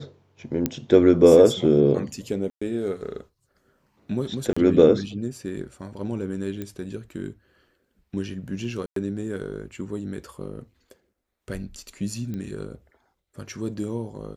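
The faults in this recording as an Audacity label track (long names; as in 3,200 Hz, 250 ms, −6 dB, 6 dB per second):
0.660000	0.660000	click −9 dBFS
2.500000	2.620000	drop-out 115 ms
4.530000	4.570000	drop-out 35 ms
6.620000	6.620000	click −19 dBFS
8.860000	8.960000	drop-out 103 ms
12.340000	12.340000	click −22 dBFS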